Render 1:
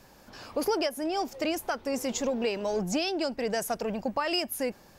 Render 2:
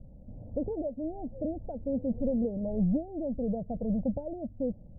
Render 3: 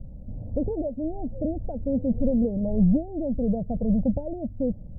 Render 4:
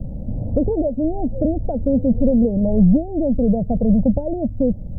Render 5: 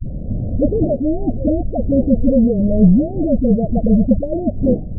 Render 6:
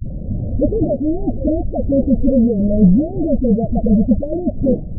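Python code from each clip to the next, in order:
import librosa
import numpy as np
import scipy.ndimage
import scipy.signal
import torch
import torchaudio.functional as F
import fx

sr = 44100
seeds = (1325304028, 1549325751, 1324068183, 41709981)

y1 = scipy.signal.sosfilt(scipy.signal.butter(6, 530.0, 'lowpass', fs=sr, output='sos'), x)
y1 = fx.low_shelf(y1, sr, hz=170.0, db=10.5)
y1 = y1 + 0.8 * np.pad(y1, (int(1.3 * sr / 1000.0), 0))[:len(y1)]
y2 = fx.low_shelf(y1, sr, hz=210.0, db=8.0)
y2 = F.gain(torch.from_numpy(y2), 3.0).numpy()
y3 = fx.band_squash(y2, sr, depth_pct=40)
y3 = F.gain(torch.from_numpy(y3), 7.5).numpy()
y4 = fx.dmg_wind(y3, sr, seeds[0], corner_hz=220.0, level_db=-31.0)
y4 = scipy.signal.sosfilt(scipy.signal.butter(16, 740.0, 'lowpass', fs=sr, output='sos'), y4)
y4 = fx.dispersion(y4, sr, late='highs', ms=68.0, hz=320.0)
y4 = F.gain(torch.from_numpy(y4), 2.5).numpy()
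y5 = fx.spec_quant(y4, sr, step_db=15)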